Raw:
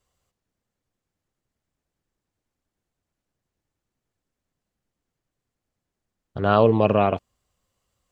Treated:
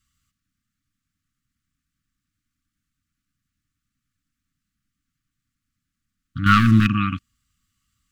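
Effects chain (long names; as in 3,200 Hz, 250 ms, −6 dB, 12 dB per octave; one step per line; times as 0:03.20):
0:06.46–0:06.87: leveller curve on the samples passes 2
linear-phase brick-wall band-stop 310–1,100 Hz
level +3.5 dB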